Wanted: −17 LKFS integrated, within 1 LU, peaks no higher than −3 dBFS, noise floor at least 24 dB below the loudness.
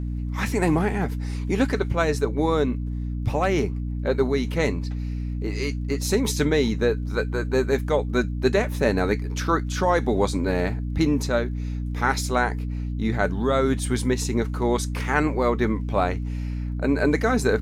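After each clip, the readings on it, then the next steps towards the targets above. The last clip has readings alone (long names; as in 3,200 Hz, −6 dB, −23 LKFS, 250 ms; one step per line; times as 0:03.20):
crackle rate 22 per second; mains hum 60 Hz; hum harmonics up to 300 Hz; level of the hum −25 dBFS; integrated loudness −24.0 LKFS; sample peak −6.0 dBFS; target loudness −17.0 LKFS
→ click removal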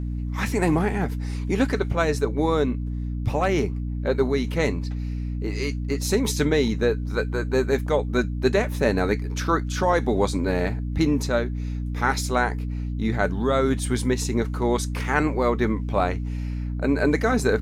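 crackle rate 0.28 per second; mains hum 60 Hz; hum harmonics up to 300 Hz; level of the hum −25 dBFS
→ hum removal 60 Hz, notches 5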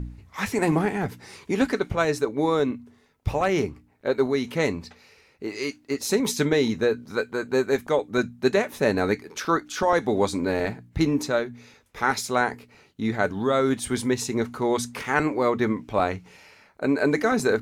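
mains hum none found; integrated loudness −25.0 LKFS; sample peak −7.0 dBFS; target loudness −17.0 LKFS
→ level +8 dB
brickwall limiter −3 dBFS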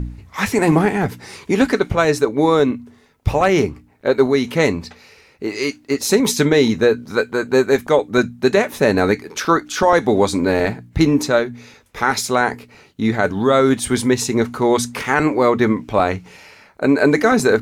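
integrated loudness −17.5 LKFS; sample peak −3.0 dBFS; background noise floor −51 dBFS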